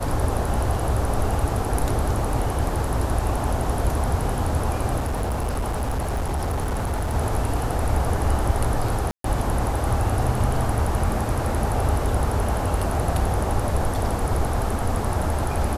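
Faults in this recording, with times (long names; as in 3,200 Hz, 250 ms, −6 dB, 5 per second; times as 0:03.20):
0:05.00–0:07.15: clipping −21 dBFS
0:09.11–0:09.24: drop-out 133 ms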